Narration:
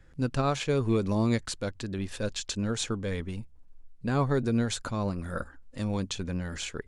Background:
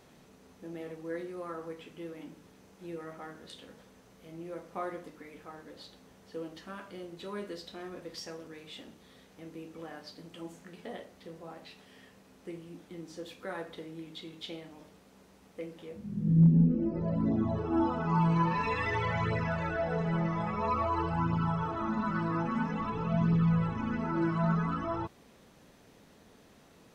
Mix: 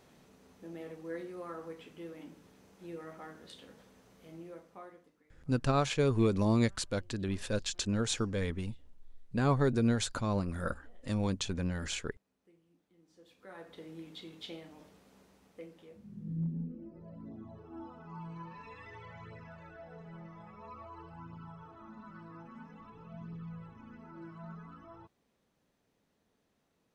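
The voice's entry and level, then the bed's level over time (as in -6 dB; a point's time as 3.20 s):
5.30 s, -1.5 dB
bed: 4.35 s -3 dB
5.32 s -23.5 dB
12.94 s -23.5 dB
13.90 s -3 dB
15.14 s -3 dB
16.95 s -18.5 dB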